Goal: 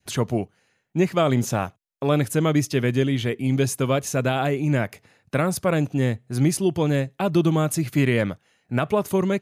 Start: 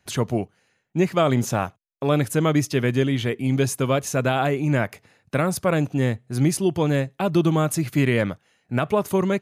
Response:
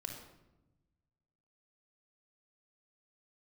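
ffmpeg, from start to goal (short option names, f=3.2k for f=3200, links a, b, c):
-af "adynamicequalizer=threshold=0.0178:dfrequency=1100:dqfactor=0.91:tfrequency=1100:tqfactor=0.91:attack=5:release=100:ratio=0.375:range=2:mode=cutabove:tftype=bell"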